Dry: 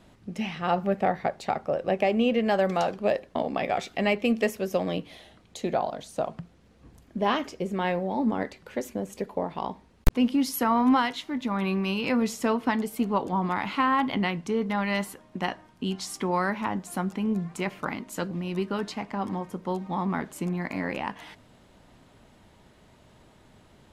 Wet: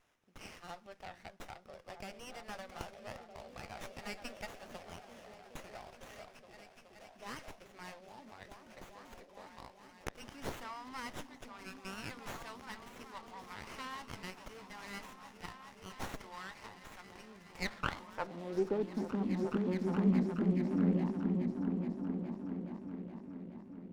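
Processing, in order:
band-pass filter sweep 5,100 Hz → 240 Hz, 0:17.07–0:19.04
echo whose low-pass opens from repeat to repeat 421 ms, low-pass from 200 Hz, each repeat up 1 octave, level 0 dB
windowed peak hold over 9 samples
level +1.5 dB

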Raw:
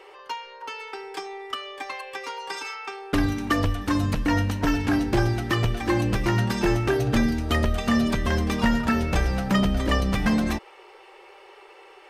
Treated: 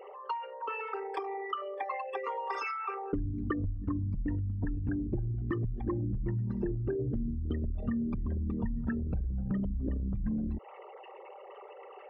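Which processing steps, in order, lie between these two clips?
spectral envelope exaggerated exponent 3
downward compressor, threshold −30 dBFS, peak gain reduction 12.5 dB

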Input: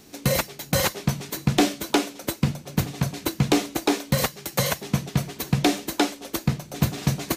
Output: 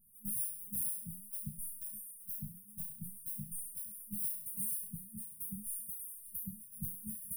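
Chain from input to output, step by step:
pitch shifter swept by a sawtooth +10.5 semitones, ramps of 483 ms
tuned comb filter 290 Hz, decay 0.64 s, mix 100%
brick-wall band-stop 220–8,800 Hz
level +13.5 dB

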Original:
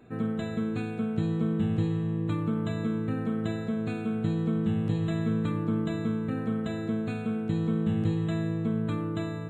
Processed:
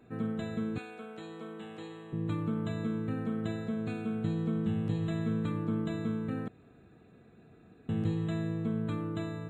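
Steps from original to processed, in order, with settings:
0:00.78–0:02.13: high-pass filter 520 Hz 12 dB per octave
0:06.48–0:07.89: fill with room tone
level −4 dB

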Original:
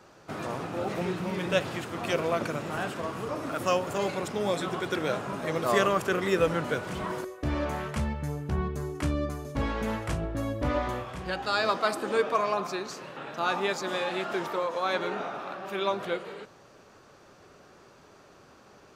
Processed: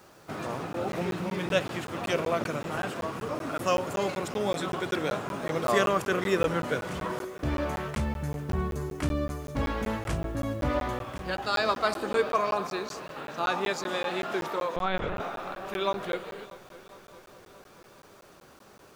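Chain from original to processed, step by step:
bit reduction 10 bits
0:14.76–0:15.20: linear-prediction vocoder at 8 kHz pitch kept
on a send: echo machine with several playback heads 209 ms, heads second and third, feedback 62%, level −21 dB
on the sum: regular buffer underruns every 0.19 s, samples 512, zero, from 0:00.73

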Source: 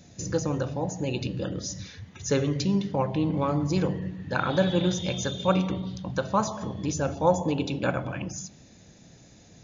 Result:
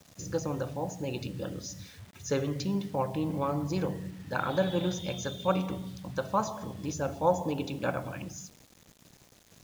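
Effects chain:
dynamic equaliser 790 Hz, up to +4 dB, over −35 dBFS, Q 0.75
bit-depth reduction 8 bits, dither none
level −6.5 dB

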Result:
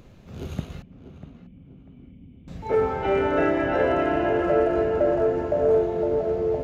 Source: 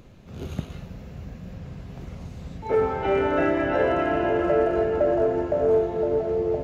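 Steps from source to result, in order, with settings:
0:00.82–0:02.48: formant resonators in series i
tape delay 644 ms, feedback 36%, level −10 dB, low-pass 1,600 Hz

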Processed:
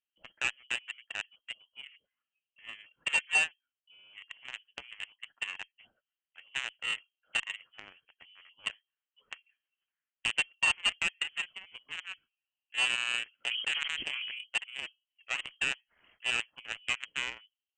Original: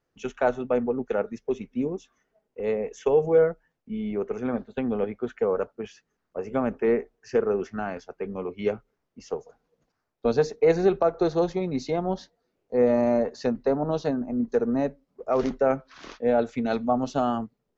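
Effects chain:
0:08.73–0:10.30: parametric band 1,700 Hz +8.5 dB 0.93 octaves
in parallel at −0.5 dB: downward compressor 4 to 1, threshold −34 dBFS, peak gain reduction 16 dB
on the sum: harmonic generator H 6 −28 dB, 7 −14 dB, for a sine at −8 dBFS
voice inversion scrambler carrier 3,200 Hz
harmonic generator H 3 −13 dB, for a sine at −6.5 dBFS
0:13.39–0:14.39: level that may fall only so fast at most 24 dB per second
level −7.5 dB

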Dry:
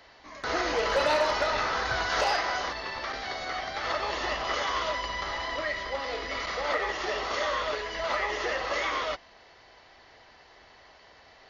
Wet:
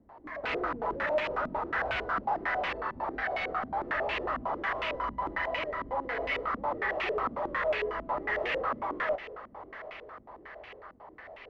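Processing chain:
hard clipping −33.5 dBFS, distortion −5 dB
on a send: feedback delay with all-pass diffusion 838 ms, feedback 60%, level −15 dB
on the sum: low-pass on a step sequencer 11 Hz 240–2,500 Hz

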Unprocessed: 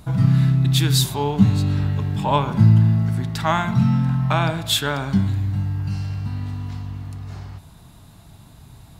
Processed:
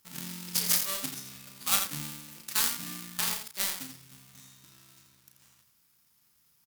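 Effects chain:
gap after every zero crossing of 0.28 ms
first-order pre-emphasis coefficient 0.97
in parallel at −8 dB: wrap-around overflow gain 7.5 dB
on the sum: power curve on the samples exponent 1.4
on a send: loudspeakers that aren't time-aligned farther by 16 metres −7 dB, 39 metres −8 dB
on the sum: wrong playback speed 33 rpm record played at 45 rpm
level +6 dB

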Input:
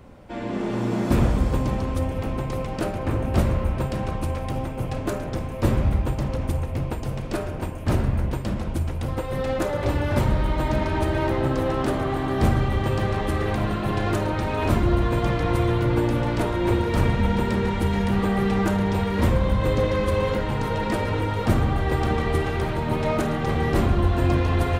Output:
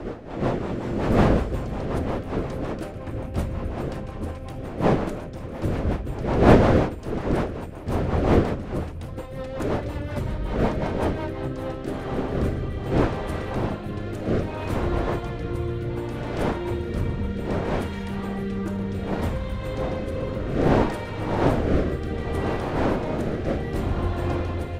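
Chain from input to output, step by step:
wind on the microphone 570 Hz −19 dBFS
rotating-speaker cabinet horn 5.5 Hz, later 0.65 Hz, at 0:11.27
level −5.5 dB

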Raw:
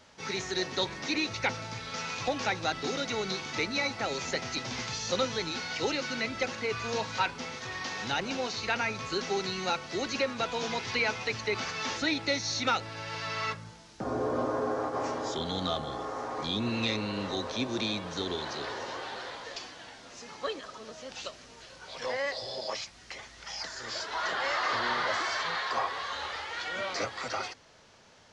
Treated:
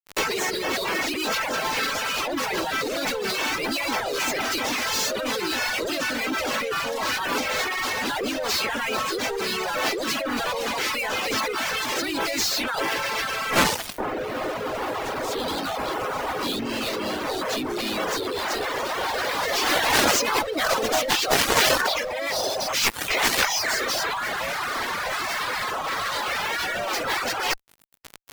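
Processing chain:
high-pass filter 250 Hz 24 dB per octave
fuzz pedal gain 52 dB, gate −49 dBFS
parametric band 7,700 Hz −6 dB 2 octaves
compressor whose output falls as the input rises −25 dBFS, ratio −1
pitch-shifted copies added +3 semitones −2 dB
reverb reduction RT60 0.91 s
level −1 dB

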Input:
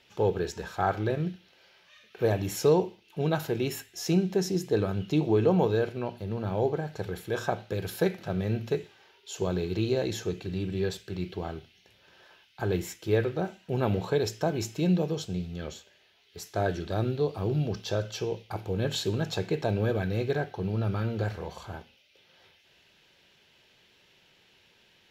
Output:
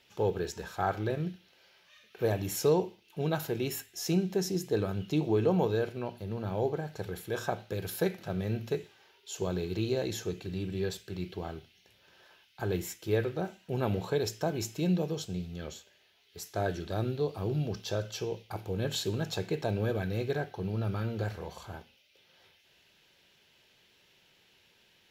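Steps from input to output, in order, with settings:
high-shelf EQ 8,200 Hz +8 dB
level −3.5 dB

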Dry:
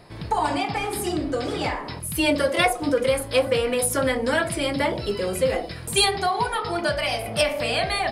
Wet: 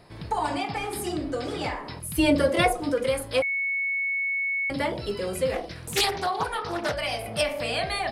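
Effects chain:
0:02.18–0:02.81: low-shelf EQ 500 Hz +8.5 dB
0:03.42–0:04.70: beep over 2,210 Hz −20 dBFS
0:05.53–0:06.94: highs frequency-modulated by the lows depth 0.35 ms
level −4 dB

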